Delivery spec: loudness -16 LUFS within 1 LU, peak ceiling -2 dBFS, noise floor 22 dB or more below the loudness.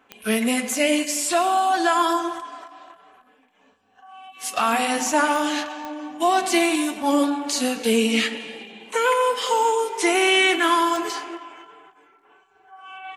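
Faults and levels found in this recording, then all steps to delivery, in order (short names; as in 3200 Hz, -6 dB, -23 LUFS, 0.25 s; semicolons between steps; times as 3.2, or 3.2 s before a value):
clicks 4; loudness -21.0 LUFS; peak -6.0 dBFS; loudness target -16.0 LUFS
-> de-click; gain +5 dB; limiter -2 dBFS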